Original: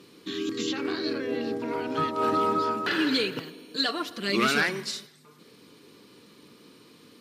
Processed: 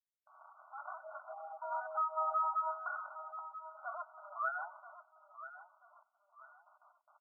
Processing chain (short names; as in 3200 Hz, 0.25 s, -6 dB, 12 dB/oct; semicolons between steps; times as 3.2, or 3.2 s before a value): opening faded in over 1.24 s; gate with hold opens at -42 dBFS; reverb removal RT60 1.9 s; limiter -22.5 dBFS, peak gain reduction 10 dB; 3.36–4.37 tube stage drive 32 dB, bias 0.6; companded quantiser 4-bit; brick-wall FIR band-pass 590–1500 Hz; feedback echo 0.984 s, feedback 34%, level -13 dB; on a send at -24 dB: reverb RT60 0.15 s, pre-delay 3 ms; on the sum: spectral gate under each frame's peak -20 dB strong; gain -1 dB